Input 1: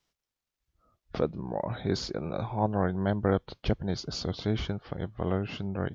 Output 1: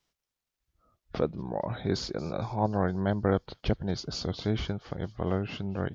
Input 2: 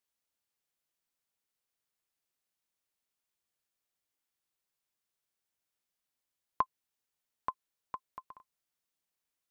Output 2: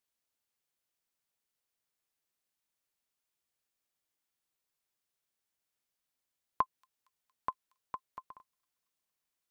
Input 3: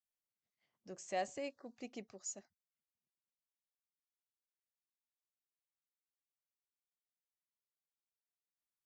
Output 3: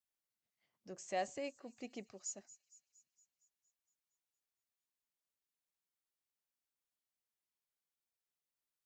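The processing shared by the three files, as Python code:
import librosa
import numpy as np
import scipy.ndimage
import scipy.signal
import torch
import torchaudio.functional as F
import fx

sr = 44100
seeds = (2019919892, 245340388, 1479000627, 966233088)

y = fx.echo_wet_highpass(x, sr, ms=231, feedback_pct=60, hz=4800.0, wet_db=-15.5)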